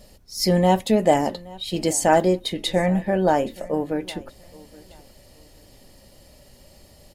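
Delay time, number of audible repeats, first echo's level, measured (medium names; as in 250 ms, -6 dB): 823 ms, 2, -22.5 dB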